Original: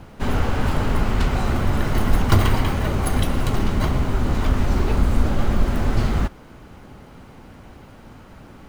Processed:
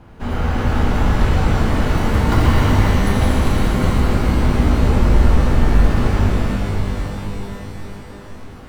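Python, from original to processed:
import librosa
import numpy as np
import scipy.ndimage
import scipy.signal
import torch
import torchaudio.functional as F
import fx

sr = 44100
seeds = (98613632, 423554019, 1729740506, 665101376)

y = fx.high_shelf(x, sr, hz=3600.0, db=-7.5)
y = fx.rev_shimmer(y, sr, seeds[0], rt60_s=4.0, semitones=12, shimmer_db=-8, drr_db=-6.0)
y = y * librosa.db_to_amplitude(-3.5)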